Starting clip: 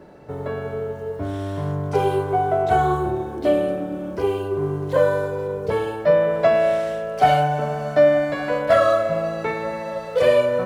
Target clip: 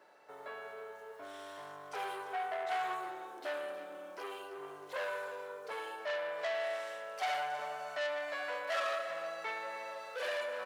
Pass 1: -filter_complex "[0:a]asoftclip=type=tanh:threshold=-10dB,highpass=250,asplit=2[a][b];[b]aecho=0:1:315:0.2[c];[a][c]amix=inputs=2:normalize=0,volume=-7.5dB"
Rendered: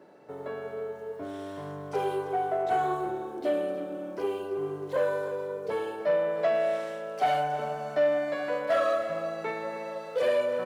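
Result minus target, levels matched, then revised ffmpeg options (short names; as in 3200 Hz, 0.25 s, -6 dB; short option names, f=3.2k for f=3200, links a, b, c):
250 Hz band +10.0 dB; soft clip: distortion -10 dB
-filter_complex "[0:a]asoftclip=type=tanh:threshold=-19dB,highpass=930,asplit=2[a][b];[b]aecho=0:1:315:0.2[c];[a][c]amix=inputs=2:normalize=0,volume=-7.5dB"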